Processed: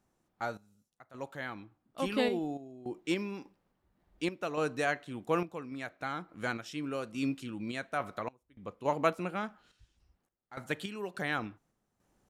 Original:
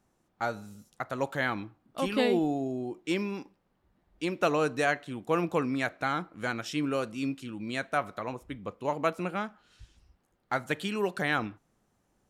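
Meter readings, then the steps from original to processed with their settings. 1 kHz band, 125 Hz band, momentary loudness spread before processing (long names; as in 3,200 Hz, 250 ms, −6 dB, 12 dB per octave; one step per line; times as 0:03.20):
−4.5 dB, −5.0 dB, 11 LU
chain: sample-and-hold tremolo, depth 95%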